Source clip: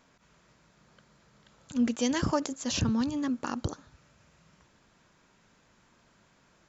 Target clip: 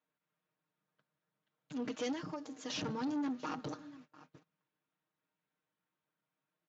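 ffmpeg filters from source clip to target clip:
-filter_complex "[0:a]flanger=delay=6.1:depth=9.5:regen=81:speed=0.56:shape=triangular,aecho=1:1:6.5:0.9,asettb=1/sr,asplit=3[s0][s1][s2];[s0]atrim=end=2.124[s3];[s1]atrim=start=2.12:end=2.7,asetpts=PTS-STARTPTS,afade=t=in:d=0.004:c=qsin,afade=t=out:st=0.576:d=0.004:c=qsin,acompressor=threshold=0.0126:ratio=8[s4];[s2]atrim=start=2.696[s5];[s3][s4]acrossfade=d=0.004:c1=hsin:c2=qsin[s6];[s6][s5]acrossfade=d=0.004:c1=qsin:c2=hsin,aecho=1:1:689:0.0708,asoftclip=type=tanh:threshold=0.0211,highpass=170,lowpass=5000,agate=range=0.0631:threshold=0.00126:ratio=16:detection=peak,volume=1.12" -ar 16000 -c:a libspeex -b:a 34k

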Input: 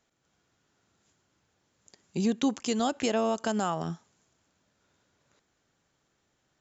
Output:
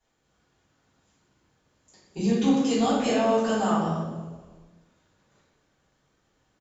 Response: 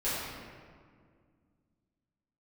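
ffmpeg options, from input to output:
-filter_complex "[0:a]asplit=4[s0][s1][s2][s3];[s1]adelay=244,afreqshift=-46,volume=0.0631[s4];[s2]adelay=488,afreqshift=-92,volume=0.0309[s5];[s3]adelay=732,afreqshift=-138,volume=0.0151[s6];[s0][s4][s5][s6]amix=inputs=4:normalize=0[s7];[1:a]atrim=start_sample=2205,asetrate=83790,aresample=44100[s8];[s7][s8]afir=irnorm=-1:irlink=0,acontrast=77,volume=0.473"

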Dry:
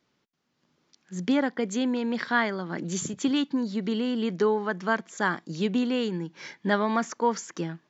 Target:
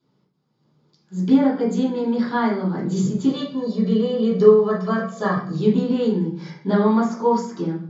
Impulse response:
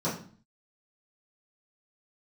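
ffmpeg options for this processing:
-filter_complex "[0:a]asettb=1/sr,asplit=3[s0][s1][s2];[s0]atrim=end=3.274[s3];[s1]atrim=start=3.27:end=5.5,asetpts=PTS-STARTPTS,afade=t=in:d=0.004:c=qsin,afade=t=out:st=2.226:d=0.004:c=qsin,aecho=1:1:1.7:0.81,atrim=end_sample=98343[s4];[s2]atrim=start=5.496[s5];[s3][s4]acrossfade=d=0.004:c1=hsin:c2=qsin[s6];[s6][s5]acrossfade=d=0.004:c1=qsin:c2=hsin[s7];[1:a]atrim=start_sample=2205,asetrate=37485,aresample=44100[s8];[s7][s8]afir=irnorm=-1:irlink=0,volume=0.398"

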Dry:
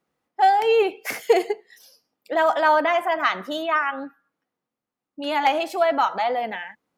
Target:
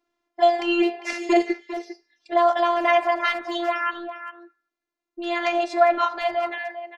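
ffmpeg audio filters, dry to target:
-filter_complex "[0:a]lowpass=f=6900:w=0.5412,lowpass=f=6900:w=1.3066,afftfilt=real='hypot(re,im)*cos(PI*b)':imag='0':win_size=512:overlap=0.75,asplit=2[s0][s1];[s1]adelay=400,highpass=300,lowpass=3400,asoftclip=type=hard:threshold=0.126,volume=0.282[s2];[s0][s2]amix=inputs=2:normalize=0,volume=1.58"

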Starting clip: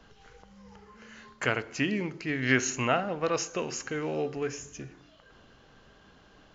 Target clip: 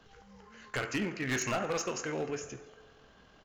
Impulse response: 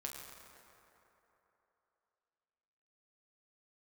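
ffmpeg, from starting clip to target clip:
-filter_complex "[0:a]asplit=2[s0][s1];[1:a]atrim=start_sample=2205,lowshelf=f=380:g=-7[s2];[s1][s2]afir=irnorm=-1:irlink=0,volume=1[s3];[s0][s3]amix=inputs=2:normalize=0,atempo=1.9,asoftclip=type=hard:threshold=0.0841,volume=0.531"

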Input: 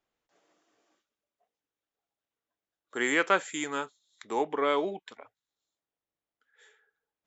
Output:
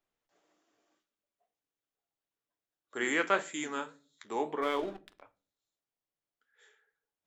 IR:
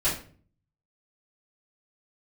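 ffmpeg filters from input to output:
-filter_complex "[0:a]flanger=delay=9.5:depth=8.1:regen=-65:speed=1.7:shape=sinusoidal,asplit=3[s0][s1][s2];[s0]afade=t=out:st=4.61:d=0.02[s3];[s1]aeval=exprs='sgn(val(0))*max(abs(val(0))-0.00473,0)':c=same,afade=t=in:st=4.61:d=0.02,afade=t=out:st=5.21:d=0.02[s4];[s2]afade=t=in:st=5.21:d=0.02[s5];[s3][s4][s5]amix=inputs=3:normalize=0,asplit=2[s6][s7];[1:a]atrim=start_sample=2205,lowshelf=f=180:g=9.5[s8];[s7][s8]afir=irnorm=-1:irlink=0,volume=0.0473[s9];[s6][s9]amix=inputs=2:normalize=0"

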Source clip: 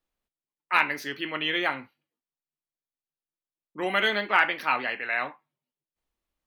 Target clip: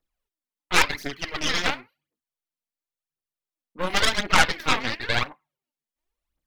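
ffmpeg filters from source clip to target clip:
-af "aphaser=in_gain=1:out_gain=1:delay=4.6:decay=0.68:speed=0.94:type=triangular,aeval=exprs='0.631*(cos(1*acos(clip(val(0)/0.631,-1,1)))-cos(1*PI/2))+0.1*(cos(3*acos(clip(val(0)/0.631,-1,1)))-cos(3*PI/2))+0.112*(cos(8*acos(clip(val(0)/0.631,-1,1)))-cos(8*PI/2))':c=same,volume=1.26"

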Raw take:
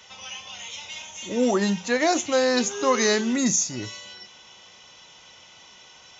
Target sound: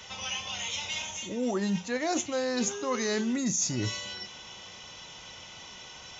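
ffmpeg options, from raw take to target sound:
-af "lowshelf=f=190:g=7.5,areverse,acompressor=threshold=0.0355:ratio=12,areverse,volume=1.41"

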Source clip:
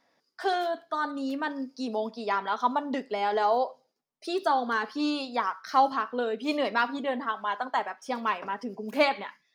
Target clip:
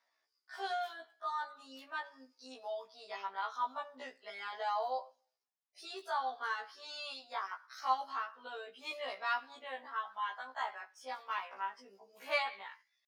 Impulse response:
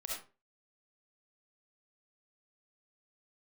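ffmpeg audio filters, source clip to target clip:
-af "atempo=0.73,highpass=820,afftfilt=real='re*1.73*eq(mod(b,3),0)':imag='im*1.73*eq(mod(b,3),0)':win_size=2048:overlap=0.75,volume=0.531"

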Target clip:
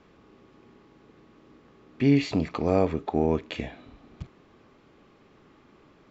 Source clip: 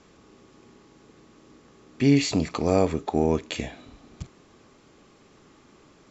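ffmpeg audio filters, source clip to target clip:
-af "lowpass=3300,volume=0.841"

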